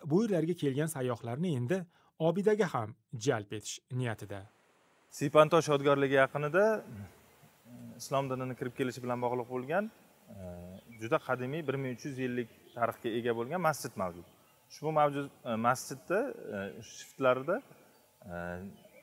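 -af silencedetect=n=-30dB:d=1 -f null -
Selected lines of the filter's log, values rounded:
silence_start: 6.79
silence_end: 8.12 | silence_duration: 1.33
silence_start: 9.83
silence_end: 11.04 | silence_duration: 1.20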